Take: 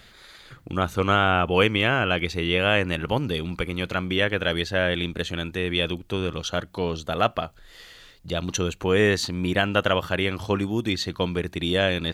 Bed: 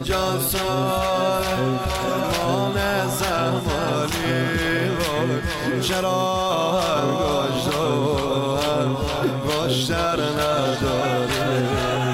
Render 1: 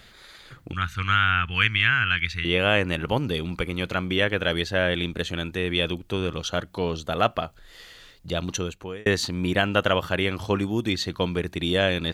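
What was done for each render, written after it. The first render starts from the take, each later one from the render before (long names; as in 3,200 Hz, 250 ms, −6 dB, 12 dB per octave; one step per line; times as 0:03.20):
0:00.73–0:02.45: drawn EQ curve 110 Hz 0 dB, 590 Hz −27 dB, 1,600 Hz +6 dB, 11,000 Hz −8 dB
0:08.41–0:09.06: fade out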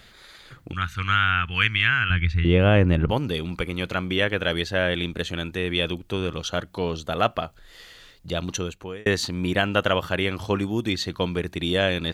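0:02.10–0:03.11: spectral tilt −3.5 dB per octave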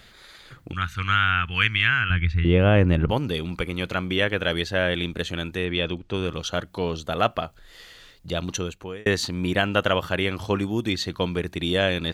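0:02.01–0:02.78: high-shelf EQ 3,800 Hz −5.5 dB
0:05.65–0:06.14: high-frequency loss of the air 96 metres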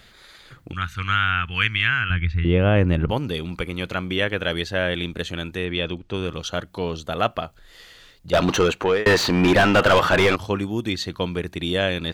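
0:02.14–0:02.76: high-frequency loss of the air 53 metres
0:08.33–0:10.36: mid-hump overdrive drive 30 dB, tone 1,500 Hz, clips at −6 dBFS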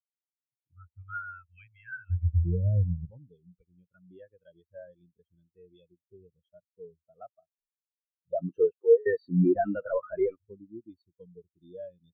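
downward compressor 1.5 to 1, threshold −35 dBFS, peak gain reduction 8.5 dB
every bin expanded away from the loudest bin 4 to 1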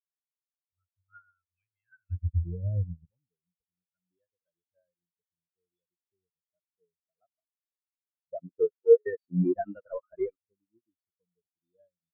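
in parallel at +1 dB: brickwall limiter −21.5 dBFS, peak gain reduction 10.5 dB
on the sum: expander for the loud parts 2.5 to 1, over −38 dBFS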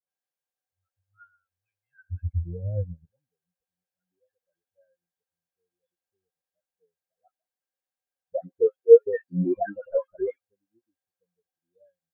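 hollow resonant body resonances 530/750/1,600 Hz, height 16 dB, ringing for 65 ms
all-pass dispersion highs, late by 104 ms, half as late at 1,300 Hz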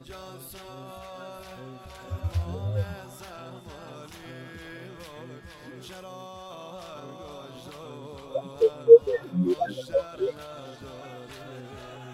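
mix in bed −21 dB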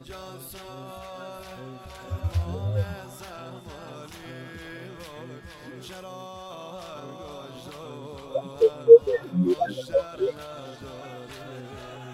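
level +2 dB
brickwall limiter −2 dBFS, peak gain reduction 1.5 dB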